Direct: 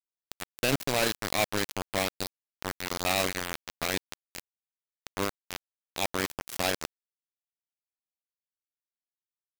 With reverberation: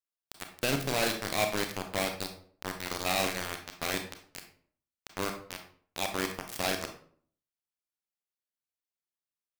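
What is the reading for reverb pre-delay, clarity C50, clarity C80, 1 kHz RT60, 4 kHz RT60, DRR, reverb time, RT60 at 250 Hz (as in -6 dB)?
27 ms, 8.0 dB, 12.5 dB, 0.50 s, 0.35 s, 4.5 dB, 0.50 s, 0.65 s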